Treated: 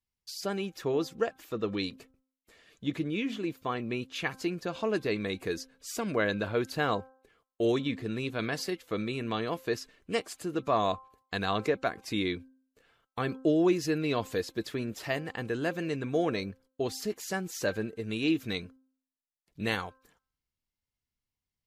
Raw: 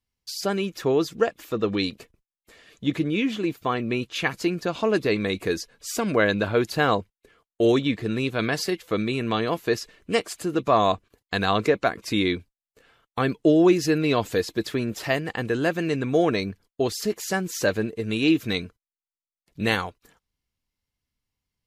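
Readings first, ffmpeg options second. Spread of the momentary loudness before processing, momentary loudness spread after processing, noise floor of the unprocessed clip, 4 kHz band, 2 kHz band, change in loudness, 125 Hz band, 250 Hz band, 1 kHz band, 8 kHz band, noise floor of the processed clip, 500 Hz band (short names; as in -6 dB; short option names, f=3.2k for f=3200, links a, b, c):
8 LU, 8 LU, under -85 dBFS, -7.5 dB, -7.5 dB, -7.5 dB, -7.5 dB, -7.5 dB, -7.5 dB, -7.5 dB, under -85 dBFS, -7.5 dB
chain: -af "bandreject=f=262:t=h:w=4,bandreject=f=524:t=h:w=4,bandreject=f=786:t=h:w=4,bandreject=f=1.048k:t=h:w=4,bandreject=f=1.31k:t=h:w=4,bandreject=f=1.572k:t=h:w=4,volume=-7.5dB"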